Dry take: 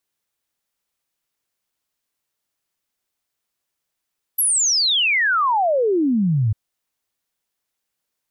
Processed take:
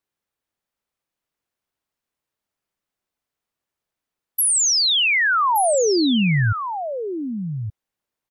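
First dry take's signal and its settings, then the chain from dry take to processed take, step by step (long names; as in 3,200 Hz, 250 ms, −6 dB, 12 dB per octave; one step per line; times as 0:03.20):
exponential sine sweep 12,000 Hz → 100 Hz 2.15 s −15 dBFS
on a send: single-tap delay 1,172 ms −8.5 dB
on the sum: one half of a high-frequency compander decoder only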